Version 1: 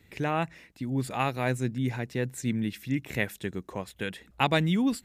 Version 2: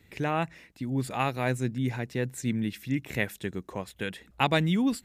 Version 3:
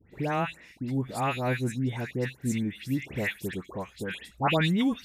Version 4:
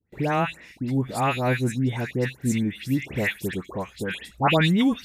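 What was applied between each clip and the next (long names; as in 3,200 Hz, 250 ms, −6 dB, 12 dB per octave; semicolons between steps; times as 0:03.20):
no processing that can be heard
all-pass dispersion highs, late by 123 ms, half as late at 1,900 Hz
noise gate with hold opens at −49 dBFS; level +5 dB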